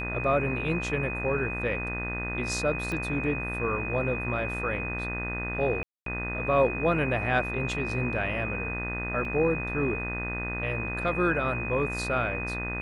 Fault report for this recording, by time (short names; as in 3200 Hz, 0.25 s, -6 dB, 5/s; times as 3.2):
buzz 60 Hz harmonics 34 -35 dBFS
tone 2500 Hz -33 dBFS
2.92 pop -21 dBFS
5.83–6.06 gap 0.233 s
9.25 gap 2.4 ms